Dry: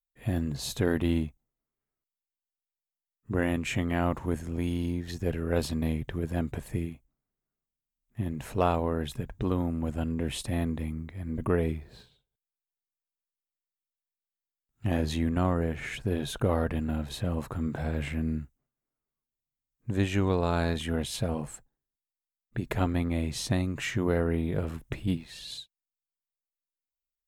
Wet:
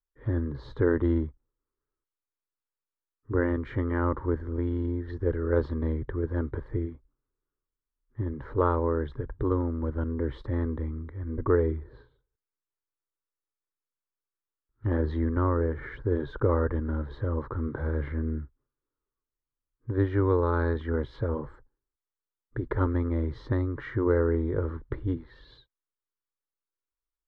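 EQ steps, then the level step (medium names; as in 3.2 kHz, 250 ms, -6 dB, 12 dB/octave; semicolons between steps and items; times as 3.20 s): low-pass 3 kHz 12 dB/octave; distance through air 370 m; static phaser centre 700 Hz, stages 6; +6.0 dB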